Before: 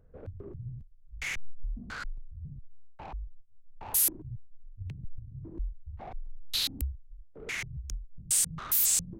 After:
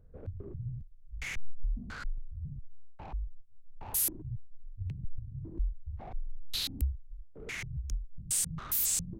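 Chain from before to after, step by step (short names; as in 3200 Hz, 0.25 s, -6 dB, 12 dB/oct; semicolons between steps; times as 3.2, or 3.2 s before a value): low shelf 280 Hz +7.5 dB; gain -4.5 dB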